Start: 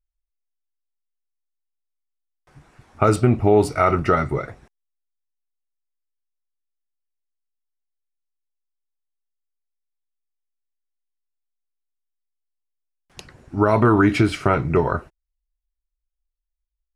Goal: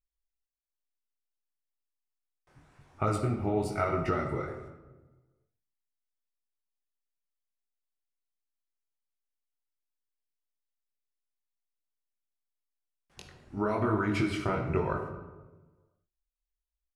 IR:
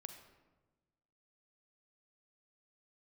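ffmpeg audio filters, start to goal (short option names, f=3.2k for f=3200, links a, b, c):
-filter_complex "[0:a]acompressor=threshold=-16dB:ratio=6,flanger=delay=18.5:depth=7.2:speed=1[a];[1:a]atrim=start_sample=2205[b];[a][b]afir=irnorm=-1:irlink=0"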